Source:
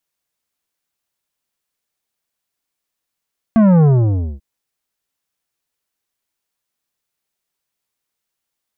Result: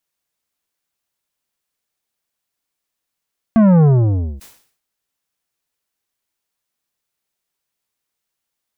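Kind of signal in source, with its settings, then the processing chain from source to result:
bass drop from 230 Hz, over 0.84 s, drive 11 dB, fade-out 0.57 s, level −8.5 dB
level that may fall only so fast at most 110 dB per second

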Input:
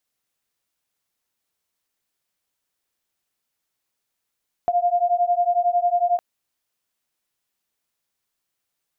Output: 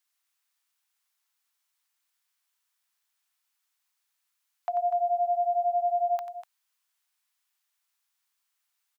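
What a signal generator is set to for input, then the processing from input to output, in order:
two tones that beat 698 Hz, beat 11 Hz, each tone −20 dBFS 1.51 s
high-pass filter 880 Hz 24 dB per octave
loudspeakers that aren't time-aligned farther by 31 metres −10 dB, 84 metres −11 dB

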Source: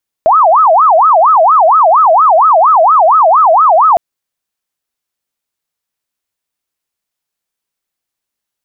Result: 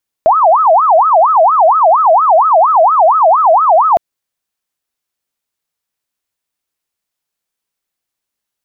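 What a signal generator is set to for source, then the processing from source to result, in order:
siren wail 632–1,300 Hz 4.3 per second sine −3.5 dBFS 3.71 s
dynamic equaliser 1,200 Hz, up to −5 dB, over −20 dBFS, Q 4.3

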